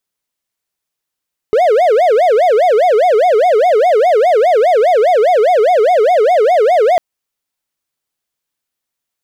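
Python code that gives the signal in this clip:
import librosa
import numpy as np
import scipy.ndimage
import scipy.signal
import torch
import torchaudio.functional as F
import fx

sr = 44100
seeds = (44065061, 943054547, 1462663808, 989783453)

y = fx.siren(sr, length_s=5.45, kind='wail', low_hz=416.0, high_hz=738.0, per_s=4.9, wave='triangle', level_db=-5.0)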